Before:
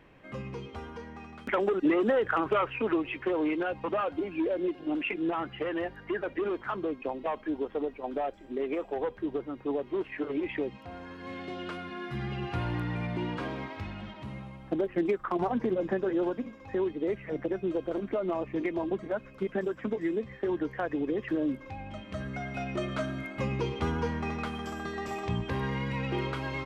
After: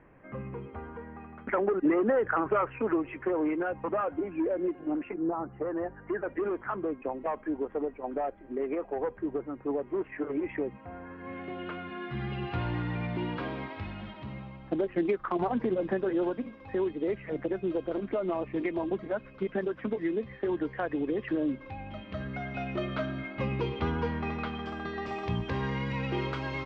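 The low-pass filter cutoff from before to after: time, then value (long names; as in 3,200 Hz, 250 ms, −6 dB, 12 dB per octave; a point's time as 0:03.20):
low-pass filter 24 dB per octave
0:04.87 2,000 Hz
0:05.38 1,100 Hz
0:06.40 2,100 Hz
0:11.08 2,100 Hz
0:12.42 4,200 Hz
0:24.88 4,200 Hz
0:25.57 6,300 Hz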